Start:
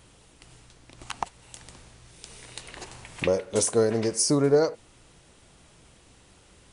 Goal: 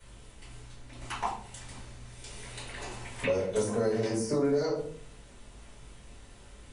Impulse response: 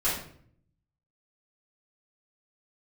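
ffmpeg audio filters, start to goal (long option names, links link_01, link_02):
-filter_complex "[1:a]atrim=start_sample=2205,asetrate=61740,aresample=44100[link_01];[0:a][link_01]afir=irnorm=-1:irlink=0,acrossover=split=120|2300[link_02][link_03][link_04];[link_02]acompressor=threshold=-37dB:ratio=4[link_05];[link_03]acompressor=threshold=-20dB:ratio=4[link_06];[link_04]acompressor=threshold=-37dB:ratio=4[link_07];[link_05][link_06][link_07]amix=inputs=3:normalize=0,volume=-6dB"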